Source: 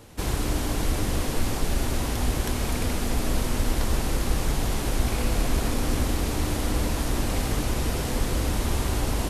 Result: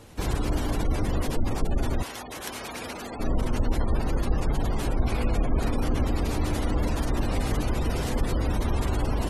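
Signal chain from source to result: spectral gate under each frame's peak -30 dB strong; 2.02–3.19 s: high-pass 1.2 kHz -> 570 Hz 6 dB/octave

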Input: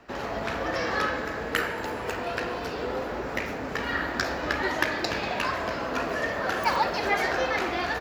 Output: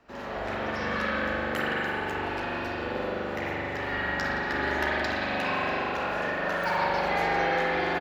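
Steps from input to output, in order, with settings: speakerphone echo 170 ms, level -6 dB; spring tank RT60 3.1 s, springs 41 ms, chirp 20 ms, DRR -7.5 dB; trim -8.5 dB

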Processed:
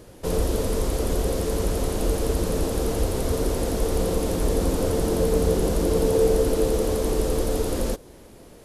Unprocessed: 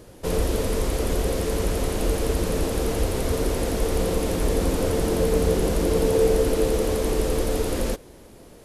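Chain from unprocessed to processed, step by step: dynamic bell 2.2 kHz, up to -5 dB, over -48 dBFS, Q 1.2

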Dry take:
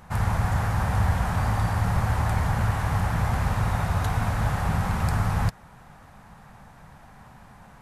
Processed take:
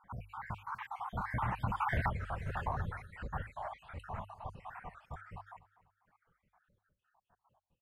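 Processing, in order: random holes in the spectrogram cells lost 71%; Doppler pass-by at 2.06 s, 33 m/s, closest 2 m; resonant high shelf 3.8 kHz -9.5 dB, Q 1.5; reverb removal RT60 1.3 s; peaking EQ 1 kHz +8 dB 1.5 oct; hum notches 50/100 Hz; feedback delay 247 ms, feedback 39%, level -18 dB; compression 10:1, threshold -44 dBFS, peak gain reduction 21.5 dB; warped record 45 rpm, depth 160 cents; trim +13.5 dB

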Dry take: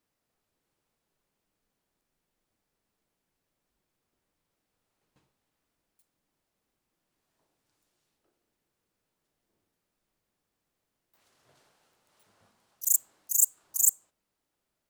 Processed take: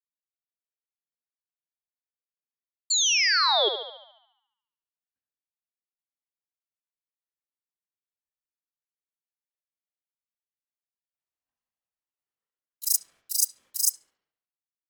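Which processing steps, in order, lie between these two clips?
split-band scrambler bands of 500 Hz; gate -52 dBFS, range -36 dB; level rider gain up to 10 dB; painted sound fall, 2.90–3.69 s, 1.8–5.9 kHz -16 dBFS; bucket-brigade echo 71 ms, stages 2048, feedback 56%, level -8 dB; ring modulator with a swept carrier 1.2 kHz, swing 25%, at 0.3 Hz; trim -3.5 dB

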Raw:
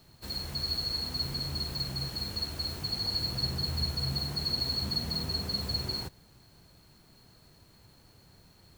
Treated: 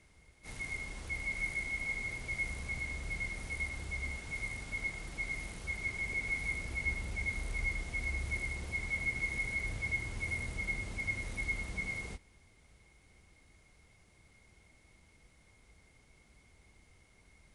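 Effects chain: speed mistake 15 ips tape played at 7.5 ips; trim -4.5 dB

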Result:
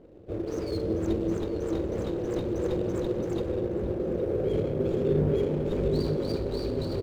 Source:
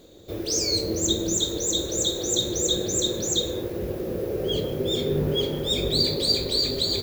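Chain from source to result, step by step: median filter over 25 samples; low-pass 1.7 kHz 6 dB/octave; echo from a far wall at 140 m, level -7 dB

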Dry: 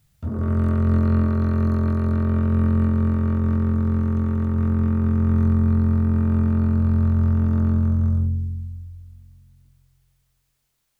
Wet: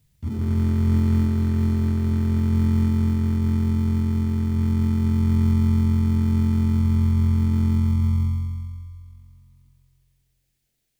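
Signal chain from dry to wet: high-order bell 830 Hz -13.5 dB; in parallel at -12 dB: sample-rate reducer 1.1 kHz, jitter 0%; on the sum: trim -2.5 dB

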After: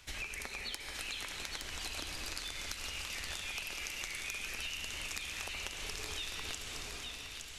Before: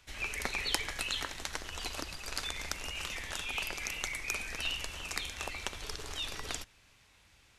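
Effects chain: bass shelf 320 Hz -3 dB; reverberation RT60 3.0 s, pre-delay 56 ms, DRR 4.5 dB; compression 10:1, threshold -44 dBFS, peak gain reduction 19.5 dB; peaking EQ 880 Hz -3.5 dB 2.7 oct; feedback echo behind a high-pass 866 ms, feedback 58%, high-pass 1.7 kHz, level -4 dB; trim +6.5 dB

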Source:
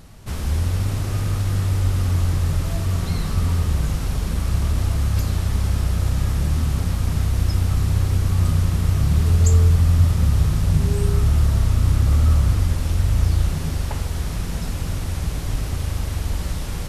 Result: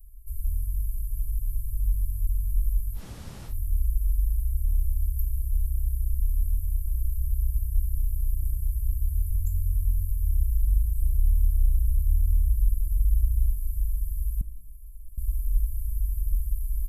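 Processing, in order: inverse Chebyshev band-stop 160–4800 Hz, stop band 60 dB; 14.41–15.18 s: inharmonic resonator 300 Hz, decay 0.26 s, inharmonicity 0.008; delay 1062 ms -21.5 dB; reverberation RT60 0.80 s, pre-delay 60 ms, DRR 18 dB; 2.98–3.50 s: room tone, crossfade 0.10 s; trim +3.5 dB

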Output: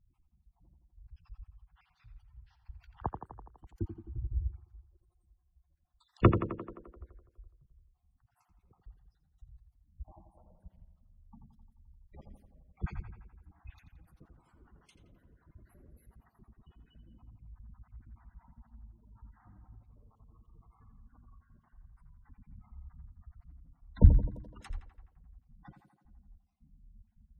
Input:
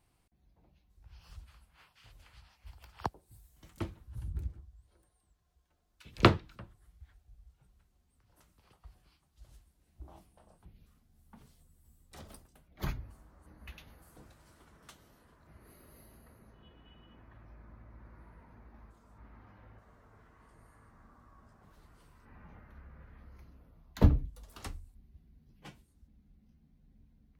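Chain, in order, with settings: random holes in the spectrogram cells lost 40%; bass shelf 64 Hz +10 dB; spectral gate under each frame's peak -15 dB strong; treble shelf 2.3 kHz -7.5 dB; tape echo 85 ms, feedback 70%, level -7 dB, low-pass 2.7 kHz

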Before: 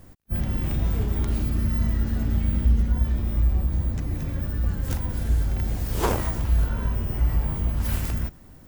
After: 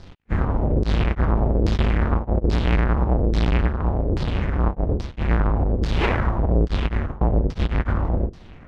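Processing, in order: square wave that keeps the level; peak limiter -15 dBFS, peak gain reduction 40.5 dB; LFO low-pass saw down 1.2 Hz 390–5000 Hz

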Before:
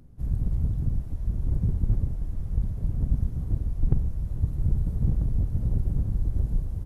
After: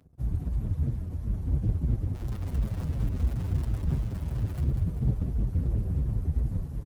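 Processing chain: 2.14–4.65 s: jump at every zero crossing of -34.5 dBFS; reverb removal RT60 0.79 s; high-pass 49 Hz 24 dB/octave; waveshaping leveller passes 2; feedback delay 195 ms, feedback 56%, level -6.5 dB; endless flanger 7.5 ms -2.9 Hz; trim -3 dB

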